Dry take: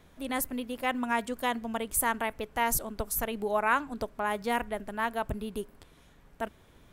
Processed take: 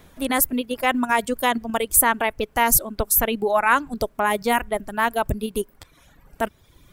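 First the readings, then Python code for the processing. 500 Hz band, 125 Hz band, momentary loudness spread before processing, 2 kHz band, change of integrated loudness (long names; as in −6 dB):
+9.0 dB, +9.0 dB, 10 LU, +9.0 dB, +10.0 dB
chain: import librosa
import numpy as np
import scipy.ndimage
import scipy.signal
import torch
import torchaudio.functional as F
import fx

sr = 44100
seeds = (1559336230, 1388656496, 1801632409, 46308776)

p1 = fx.dereverb_blind(x, sr, rt60_s=0.96)
p2 = fx.high_shelf(p1, sr, hz=9300.0, db=7.5)
p3 = fx.level_steps(p2, sr, step_db=18)
p4 = p2 + (p3 * librosa.db_to_amplitude(0.0))
y = p4 * librosa.db_to_amplitude(6.5)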